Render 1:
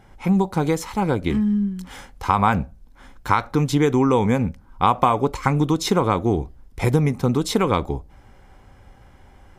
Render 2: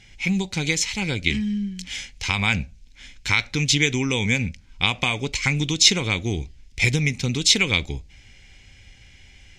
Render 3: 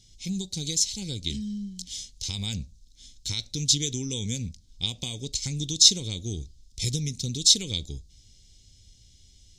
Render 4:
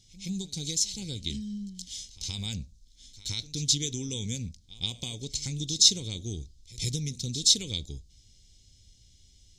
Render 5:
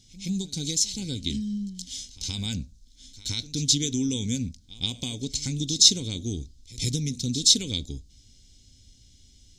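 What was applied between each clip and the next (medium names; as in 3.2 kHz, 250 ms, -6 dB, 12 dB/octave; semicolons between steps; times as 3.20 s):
FFT filter 100 Hz 0 dB, 1.2 kHz -14 dB, 2.3 kHz +15 dB, 3.6 kHz +13 dB, 6.7 kHz +14 dB, 12 kHz -7 dB; trim -1 dB
FFT filter 110 Hz 0 dB, 460 Hz -5 dB, 1.2 kHz -23 dB, 2.4 kHz -19 dB, 3.7 kHz +4 dB, 6.3 kHz +7 dB; trim -6 dB
pre-echo 123 ms -18 dB; trim -3 dB
small resonant body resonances 260/1500 Hz, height 9 dB; trim +3 dB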